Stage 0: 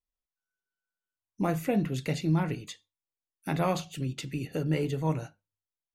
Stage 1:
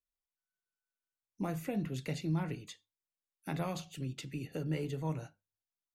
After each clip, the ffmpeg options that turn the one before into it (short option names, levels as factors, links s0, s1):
-filter_complex "[0:a]acrossover=split=200|3000[s0][s1][s2];[s1]acompressor=threshold=0.0398:ratio=6[s3];[s0][s3][s2]amix=inputs=3:normalize=0,volume=0.473"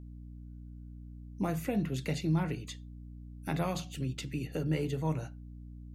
-af "aeval=exprs='val(0)+0.00355*(sin(2*PI*60*n/s)+sin(2*PI*2*60*n/s)/2+sin(2*PI*3*60*n/s)/3+sin(2*PI*4*60*n/s)/4+sin(2*PI*5*60*n/s)/5)':c=same,volume=1.58"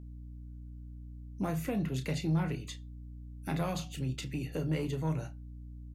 -filter_complex "[0:a]asoftclip=type=tanh:threshold=0.0668,asplit=2[s0][s1];[s1]adelay=31,volume=0.299[s2];[s0][s2]amix=inputs=2:normalize=0"